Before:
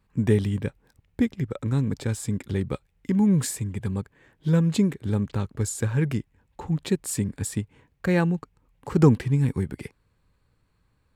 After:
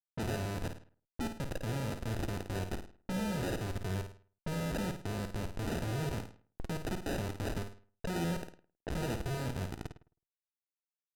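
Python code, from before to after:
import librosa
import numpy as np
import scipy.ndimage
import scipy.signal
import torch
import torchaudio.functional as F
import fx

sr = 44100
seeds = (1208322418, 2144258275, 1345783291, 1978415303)

p1 = fx.schmitt(x, sr, flips_db=-28.5)
p2 = fx.peak_eq(p1, sr, hz=500.0, db=4.0, octaves=2.4)
p3 = fx.comb_fb(p2, sr, f0_hz=340.0, decay_s=0.16, harmonics='all', damping=0.0, mix_pct=40)
p4 = fx.sample_hold(p3, sr, seeds[0], rate_hz=1100.0, jitter_pct=0)
p5 = p4 + fx.room_flutter(p4, sr, wall_m=9.1, rt60_s=0.42, dry=0)
p6 = fx.env_lowpass(p5, sr, base_hz=660.0, full_db=-28.0)
y = F.gain(torch.from_numpy(p6), -7.0).numpy()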